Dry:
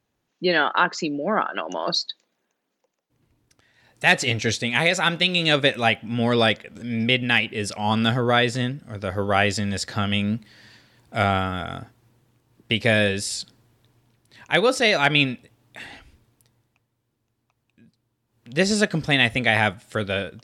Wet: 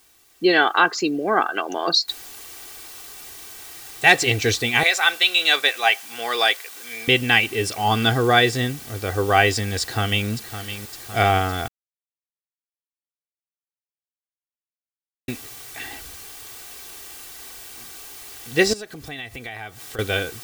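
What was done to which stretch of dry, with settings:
2.08 noise floor step -60 dB -43 dB
4.83–7.08 HPF 780 Hz
9.8–10.29 echo throw 0.56 s, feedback 60%, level -11 dB
11.68–15.28 mute
18.73–19.99 compressor 4:1, threshold -37 dBFS
whole clip: comb 2.6 ms, depth 61%; gain +2 dB

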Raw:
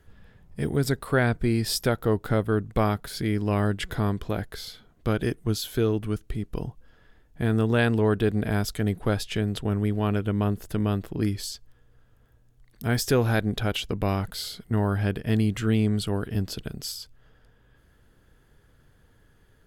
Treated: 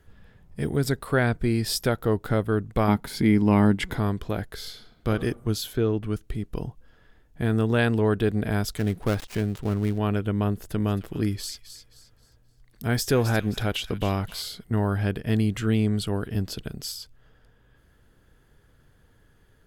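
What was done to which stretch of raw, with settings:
2.88–3.97 small resonant body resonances 230/880/2100 Hz, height 10 dB, ringing for 20 ms
4.54–5.09 reverb throw, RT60 0.91 s, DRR 5 dB
5.72–6.12 LPF 1900 Hz -> 4600 Hz 6 dB/oct
8.77–9.98 switching dead time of 0.15 ms
10.53–14.42 thin delay 0.264 s, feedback 33%, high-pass 2000 Hz, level -10 dB

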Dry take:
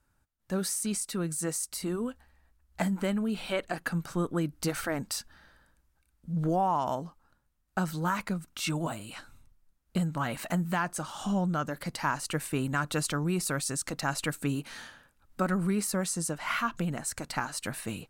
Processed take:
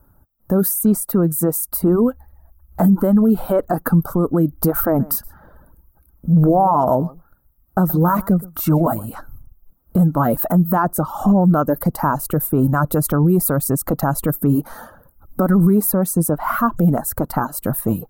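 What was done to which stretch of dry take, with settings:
4.87–9.15 echo 0.123 s -13.5 dB
whole clip: reverb removal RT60 0.6 s; EQ curve 610 Hz 0 dB, 1300 Hz -6 dB, 2400 Hz -30 dB, 8100 Hz -18 dB, 14000 Hz +7 dB; maximiser +26 dB; gain -6 dB

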